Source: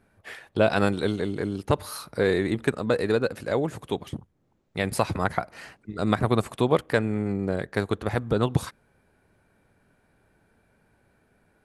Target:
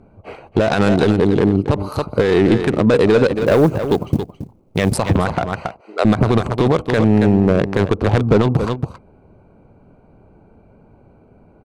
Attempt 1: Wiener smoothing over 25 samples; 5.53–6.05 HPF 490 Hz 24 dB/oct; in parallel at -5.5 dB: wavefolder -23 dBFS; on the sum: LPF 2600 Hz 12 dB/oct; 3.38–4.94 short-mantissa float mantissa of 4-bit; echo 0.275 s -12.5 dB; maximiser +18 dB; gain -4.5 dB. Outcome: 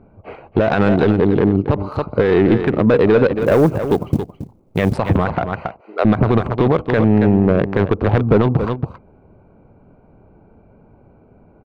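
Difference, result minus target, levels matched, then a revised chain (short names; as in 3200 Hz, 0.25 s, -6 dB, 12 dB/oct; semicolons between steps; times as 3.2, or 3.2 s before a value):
8000 Hz band -14.0 dB
Wiener smoothing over 25 samples; 5.53–6.05 HPF 490 Hz 24 dB/oct; in parallel at -5.5 dB: wavefolder -23 dBFS; on the sum: LPF 9400 Hz 12 dB/oct; 3.38–4.94 short-mantissa float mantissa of 4-bit; echo 0.275 s -12.5 dB; maximiser +18 dB; gain -4.5 dB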